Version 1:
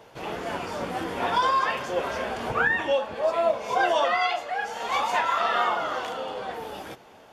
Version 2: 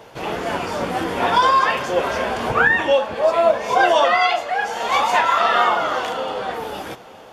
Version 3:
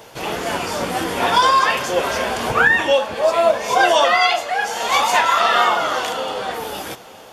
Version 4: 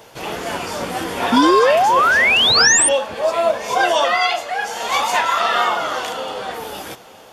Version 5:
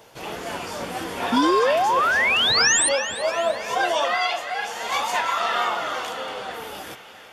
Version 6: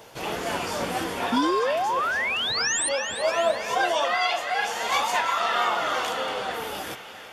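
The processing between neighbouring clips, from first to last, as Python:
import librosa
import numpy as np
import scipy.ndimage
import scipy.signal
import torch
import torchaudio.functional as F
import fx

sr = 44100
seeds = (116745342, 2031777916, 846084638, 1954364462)

y1 = x + 10.0 ** (-22.0 / 20.0) * np.pad(x, (int(897 * sr / 1000.0), 0))[:len(x)]
y1 = y1 * 10.0 ** (7.5 / 20.0)
y2 = fx.high_shelf(y1, sr, hz=4100.0, db=11.5)
y3 = fx.spec_paint(y2, sr, seeds[0], shape='rise', start_s=1.32, length_s=1.57, low_hz=230.0, high_hz=9500.0, level_db=-12.0)
y3 = y3 * 10.0 ** (-2.0 / 20.0)
y4 = fx.echo_banded(y3, sr, ms=335, feedback_pct=68, hz=2300.0, wet_db=-9.5)
y4 = y4 * 10.0 ** (-6.0 / 20.0)
y5 = fx.rider(y4, sr, range_db=5, speed_s=0.5)
y5 = y5 * 10.0 ** (-2.5 / 20.0)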